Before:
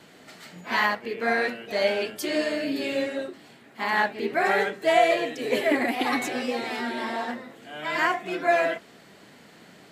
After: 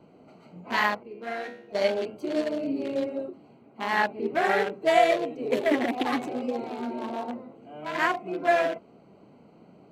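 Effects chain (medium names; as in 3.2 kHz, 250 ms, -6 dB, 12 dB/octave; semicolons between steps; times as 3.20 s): local Wiener filter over 25 samples; 1.03–1.75 s: feedback comb 69 Hz, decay 0.53 s, harmonics all, mix 80%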